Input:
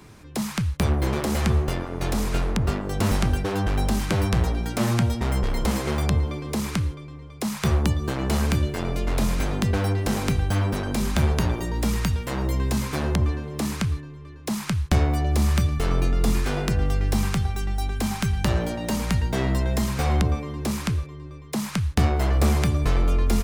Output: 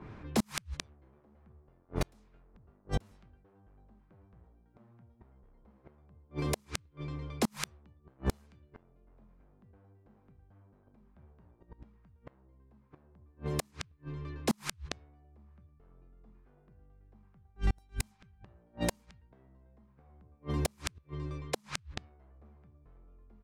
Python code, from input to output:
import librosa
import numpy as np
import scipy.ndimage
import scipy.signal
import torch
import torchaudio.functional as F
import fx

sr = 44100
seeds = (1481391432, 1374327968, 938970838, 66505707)

y = fx.gate_flip(x, sr, shuts_db=-18.0, range_db=-38)
y = fx.env_lowpass(y, sr, base_hz=1100.0, full_db=-32.0)